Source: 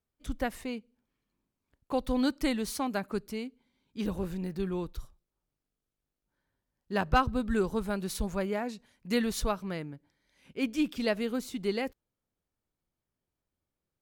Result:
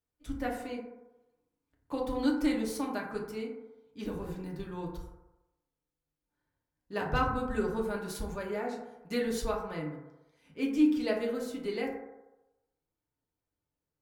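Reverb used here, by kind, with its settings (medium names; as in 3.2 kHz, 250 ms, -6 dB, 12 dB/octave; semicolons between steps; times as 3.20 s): FDN reverb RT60 1 s, low-frequency decay 0.75×, high-frequency decay 0.3×, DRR -2.5 dB; trim -6.5 dB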